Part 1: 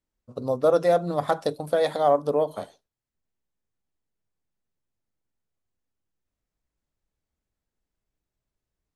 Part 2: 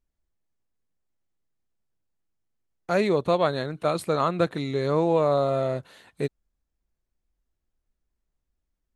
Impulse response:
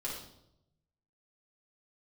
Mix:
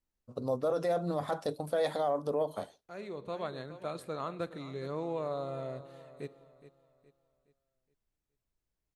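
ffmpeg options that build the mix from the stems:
-filter_complex "[0:a]volume=-4.5dB,asplit=2[a][b];[1:a]volume=-14.5dB,asplit=3[c][d][e];[d]volume=-18dB[f];[e]volume=-14.5dB[g];[b]apad=whole_len=394935[h];[c][h]sidechaincompress=threshold=-44dB:ratio=4:attack=16:release=740[i];[2:a]atrim=start_sample=2205[j];[f][j]afir=irnorm=-1:irlink=0[k];[g]aecho=0:1:418|836|1254|1672|2090:1|0.39|0.152|0.0593|0.0231[l];[a][i][k][l]amix=inputs=4:normalize=0,alimiter=limit=-22.5dB:level=0:latency=1:release=11"

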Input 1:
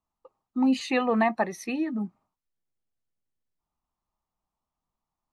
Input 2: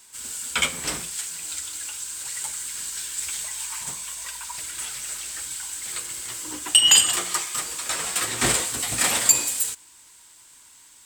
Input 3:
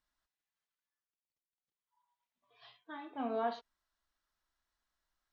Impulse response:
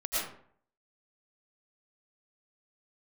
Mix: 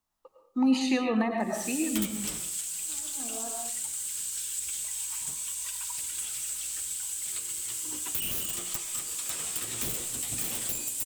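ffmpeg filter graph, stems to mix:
-filter_complex "[0:a]highshelf=f=3k:g=10,volume=-3.5dB,asplit=2[a][b];[b]volume=-7dB[c];[1:a]aeval=exprs='(mod(5.62*val(0)+1,2)-1)/5.62':c=same,aexciter=amount=1.6:drive=7.9:freq=2.6k,adelay=1400,volume=-7dB,asplit=2[d][e];[e]volume=-19dB[f];[2:a]volume=-9.5dB,asplit=2[g][h];[h]volume=-3dB[i];[3:a]atrim=start_sample=2205[j];[c][f][i]amix=inputs=3:normalize=0[k];[k][j]afir=irnorm=-1:irlink=0[l];[a][d][g][l]amix=inputs=4:normalize=0,acrossover=split=410[m][n];[n]acompressor=threshold=-32dB:ratio=4[o];[m][o]amix=inputs=2:normalize=0"

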